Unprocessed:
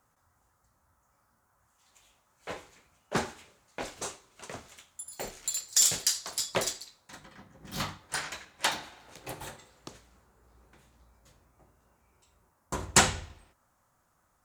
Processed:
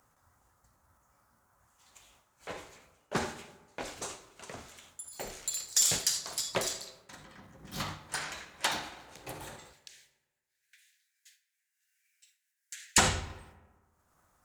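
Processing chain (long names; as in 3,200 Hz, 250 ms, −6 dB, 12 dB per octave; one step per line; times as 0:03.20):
0:09.73–0:12.98: Butterworth high-pass 1,600 Hz 96 dB per octave
downward expander −57 dBFS
upward compression, threshold −44 dBFS
transient designer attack +2 dB, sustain +7 dB
convolution reverb RT60 1.4 s, pre-delay 30 ms, DRR 16 dB
level −4 dB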